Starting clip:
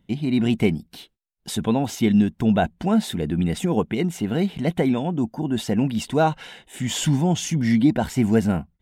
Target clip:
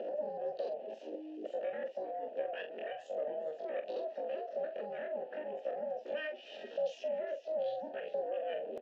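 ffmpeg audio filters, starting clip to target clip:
-filter_complex "[0:a]aeval=exprs='val(0)+0.5*0.0282*sgn(val(0))':c=same,afwtdn=0.0316,equalizer=f=1.7k:w=0.6:g=2,acompressor=threshold=-30dB:ratio=2,alimiter=level_in=4dB:limit=-24dB:level=0:latency=1:release=115,volume=-4dB,acompressor=mode=upward:threshold=-37dB:ratio=2.5,aeval=exprs='val(0)*sin(2*PI*160*n/s)':c=same,asetrate=85689,aresample=44100,atempo=0.514651,asplit=3[a][b][c];[a]bandpass=f=530:t=q:w=8,volume=0dB[d];[b]bandpass=f=1.84k:t=q:w=8,volume=-6dB[e];[c]bandpass=f=2.48k:t=q:w=8,volume=-9dB[f];[d][e][f]amix=inputs=3:normalize=0,highpass=f=210:w=0.5412,highpass=f=210:w=1.3066,equalizer=f=230:t=q:w=4:g=5,equalizer=f=390:t=q:w=4:g=4,equalizer=f=630:t=q:w=4:g=4,equalizer=f=2k:t=q:w=4:g=-6,equalizer=f=2.9k:t=q:w=4:g=9,lowpass=f=5.7k:w=0.5412,lowpass=f=5.7k:w=1.3066,asplit=2[g][h];[h]adelay=45,volume=-9dB[i];[g][i]amix=inputs=2:normalize=0,asplit=4[j][k][l][m];[k]adelay=412,afreqshift=42,volume=-17dB[n];[l]adelay=824,afreqshift=84,volume=-26.6dB[o];[m]adelay=1236,afreqshift=126,volume=-36.3dB[p];[j][n][o][p]amix=inputs=4:normalize=0,volume=9.5dB"

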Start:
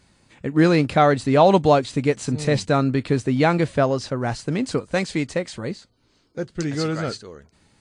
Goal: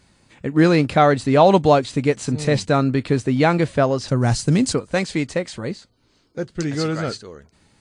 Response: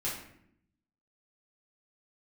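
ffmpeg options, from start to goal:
-filter_complex "[0:a]asettb=1/sr,asplit=3[a][b][c];[a]atrim=end=4.084[d];[b]atrim=start=4.08:end=4.73,asetpts=PTS-STARTPTS,afade=t=in:d=0.004:c=qsin,afade=t=out:st=0.646:d=0.004:c=qsin,bass=f=250:g=9,treble=f=4k:g=11[e];[c]atrim=start=4.726[f];[d][e]acrossfade=d=0.004:c1=hsin:c2=qsin[g];[g][f]acrossfade=d=0.004:c1=qsin:c2=hsin,volume=1.5dB"

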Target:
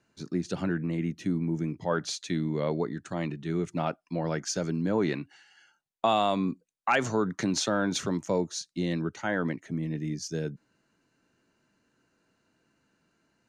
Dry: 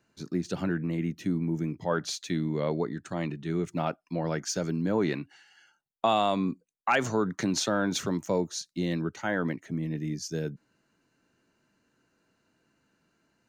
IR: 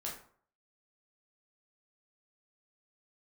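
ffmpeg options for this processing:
-af "lowpass=f=11k:w=0.5412,lowpass=f=11k:w=1.3066"

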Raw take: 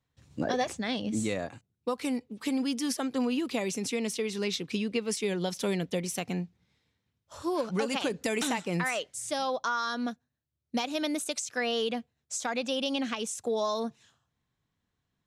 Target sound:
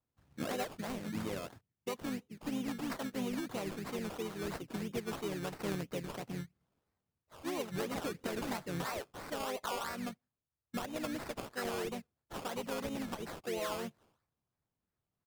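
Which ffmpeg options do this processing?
-filter_complex "[0:a]acrusher=samples=18:mix=1:aa=0.000001:lfo=1:lforange=10.8:lforate=3,lowshelf=f=78:g=-4,asplit=3[a][b][c];[b]asetrate=22050,aresample=44100,atempo=2,volume=-17dB[d];[c]asetrate=35002,aresample=44100,atempo=1.25992,volume=-5dB[e];[a][d][e]amix=inputs=3:normalize=0,volume=-9dB"

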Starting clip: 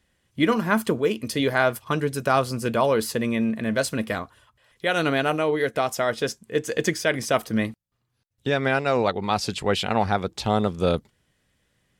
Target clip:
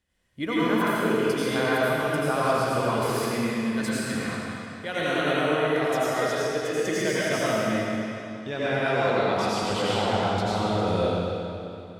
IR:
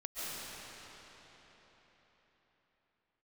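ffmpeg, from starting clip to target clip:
-filter_complex "[0:a]asettb=1/sr,asplit=3[a][b][c];[a]atrim=end=2.794[d];[b]atrim=start=2.79:end=4.2,asetpts=PTS-STARTPTS,afade=t=in:d=0.004:c=qsin,afade=t=out:st=1.406:d=0.004:c=qsin,equalizer=f=590:t=o:w=0.46:g=-13.5[e];[c]atrim=start=4.196[f];[d][e]acrossfade=d=0.004:c1=hsin:c2=qsin[g];[g][f]acrossfade=d=0.004:c1=qsin:c2=hsin[h];[1:a]atrim=start_sample=2205,asetrate=70560,aresample=44100[i];[h][i]afir=irnorm=-1:irlink=0"

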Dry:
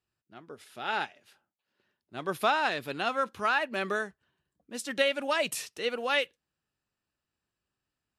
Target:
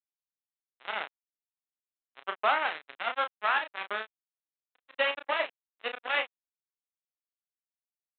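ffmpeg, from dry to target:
-filter_complex "[0:a]aresample=8000,acrusher=bits=3:mix=0:aa=0.5,aresample=44100,highpass=530,lowpass=2.7k,asplit=2[a][b];[b]adelay=32,volume=-7dB[c];[a][c]amix=inputs=2:normalize=0"

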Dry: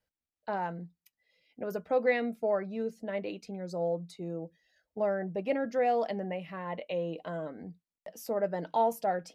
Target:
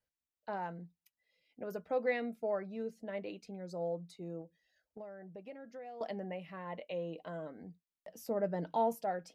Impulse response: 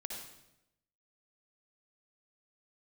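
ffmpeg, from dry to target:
-filter_complex "[0:a]asettb=1/sr,asplit=3[a][b][c];[a]atrim=end=4.414[d];[b]atrim=start=4.41:end=6.01,asetpts=PTS-STARTPTS,afade=t=in:d=0.004:c=qsin,afade=t=out:st=1.596:d=0.004:c=qsin,acompressor=threshold=-42dB:ratio=4[e];[c]atrim=start=6.006[f];[d][e]acrossfade=d=0.004:c1=hsin:c2=qsin[g];[g][f]acrossfade=d=0.004:c1=qsin:c2=hsin,asettb=1/sr,asplit=3[h][i][j];[h]atrim=end=8.124[k];[i]atrim=start=8.12:end=8.95,asetpts=PTS-STARTPTS,afade=t=in:d=0.004:c=qsin,afade=t=out:st=0.826:d=0.004:c=qsin,lowshelf=f=290:g=9.5[l];[j]atrim=start=8.946[m];[k][l]acrossfade=d=0.004:c1=hsin:c2=qsin[n];[n][m]acrossfade=d=0.004:c1=qsin:c2=hsin,volume=-6dB"

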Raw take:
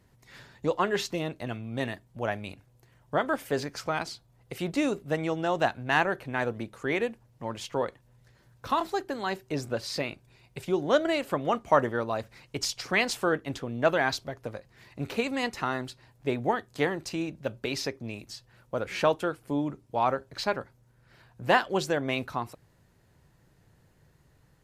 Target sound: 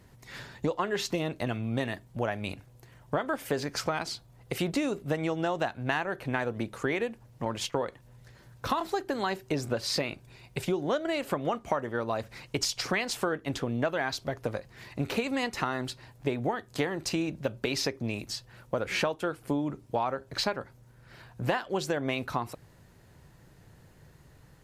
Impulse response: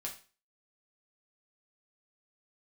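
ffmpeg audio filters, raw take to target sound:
-filter_complex "[0:a]acompressor=threshold=-32dB:ratio=10,asettb=1/sr,asplit=3[a][b][c];[a]atrim=end=7.454[d];[b]atrim=start=7.45:end=7.87,asetpts=PTS-STARTPTS,afade=t=in:d=0.004:c=qsin,afade=t=out:st=0.416:d=0.004:c=qsin,agate=range=-12dB:threshold=-42dB:ratio=16:detection=peak[e];[c]atrim=start=7.866[f];[d][e]acrossfade=d=0.004:c1=hsin:c2=qsin[g];[g][f]acrossfade=d=0.004:c1=qsin:c2=hsin,volume=6.5dB"

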